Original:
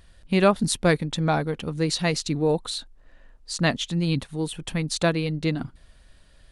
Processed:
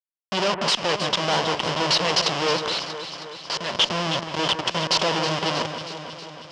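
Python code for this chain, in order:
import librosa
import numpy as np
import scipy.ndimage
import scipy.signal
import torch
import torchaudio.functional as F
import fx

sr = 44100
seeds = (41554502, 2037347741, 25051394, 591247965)

p1 = fx.schmitt(x, sr, flips_db=-30.5)
p2 = fx.level_steps(p1, sr, step_db=16, at=(2.68, 3.75))
p3 = fx.cabinet(p2, sr, low_hz=250.0, low_slope=12, high_hz=6400.0, hz=(270.0, 560.0, 1000.0, 3000.0, 5100.0), db=(-10, 4, 7, 10, 9))
p4 = fx.cheby_harmonics(p3, sr, harmonics=(2,), levels_db=(-24,), full_scale_db=-9.5)
p5 = p4 + fx.echo_alternate(p4, sr, ms=159, hz=2100.0, feedback_pct=78, wet_db=-7.5, dry=0)
y = p5 * librosa.db_to_amplitude(3.5)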